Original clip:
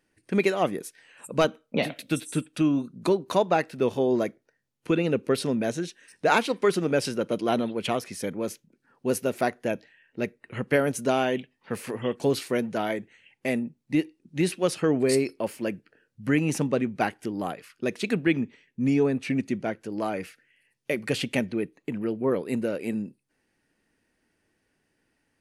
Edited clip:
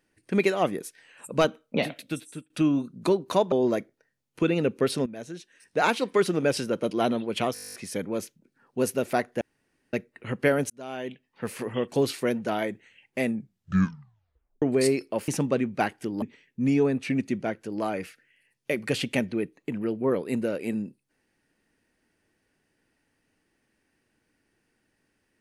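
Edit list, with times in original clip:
0:01.77–0:02.50: fade out, to −20 dB
0:03.52–0:04.00: remove
0:05.54–0:06.56: fade in, from −15.5 dB
0:08.02: stutter 0.02 s, 11 plays
0:09.69–0:10.21: fill with room tone
0:10.98–0:11.82: fade in
0:13.55: tape stop 1.35 s
0:15.56–0:16.49: remove
0:17.43–0:18.42: remove

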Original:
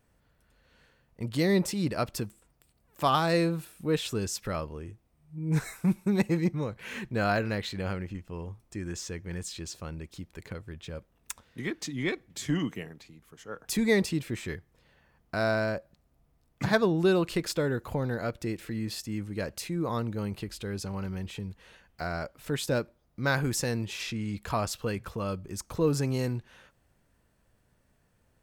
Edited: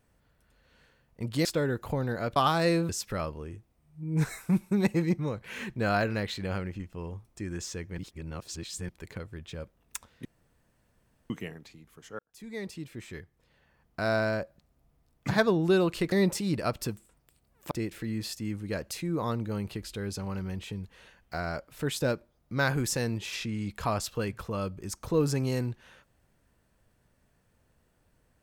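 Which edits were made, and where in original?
0:01.45–0:03.04: swap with 0:17.47–0:18.38
0:03.57–0:04.24: remove
0:09.33–0:10.24: reverse
0:11.60–0:12.65: fill with room tone
0:13.54–0:15.52: fade in

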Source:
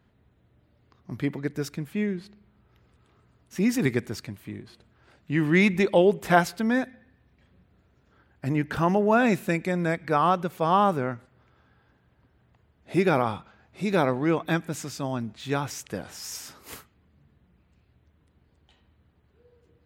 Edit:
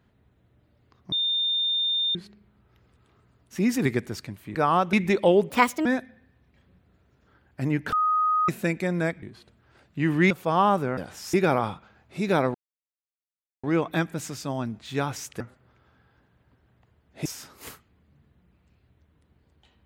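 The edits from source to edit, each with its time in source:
0:01.12–0:02.15: beep over 3,620 Hz −22 dBFS
0:04.55–0:05.63: swap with 0:10.07–0:10.45
0:06.20–0:06.70: play speed 141%
0:08.77–0:09.33: beep over 1,250 Hz −19.5 dBFS
0:11.12–0:12.97: swap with 0:15.95–0:16.31
0:14.18: splice in silence 1.09 s

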